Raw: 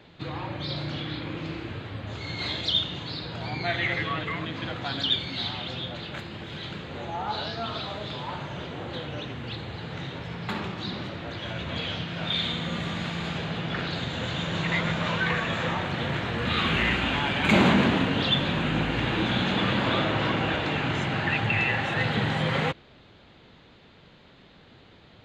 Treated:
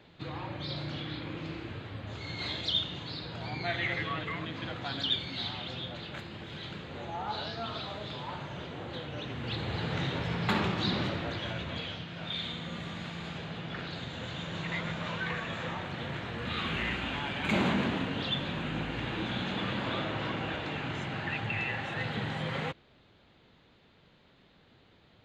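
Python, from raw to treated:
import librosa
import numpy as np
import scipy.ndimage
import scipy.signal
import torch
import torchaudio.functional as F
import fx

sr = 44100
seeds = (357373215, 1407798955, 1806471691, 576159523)

y = fx.gain(x, sr, db=fx.line((9.12, -5.0), (9.76, 3.0), (11.08, 3.0), (11.99, -8.5)))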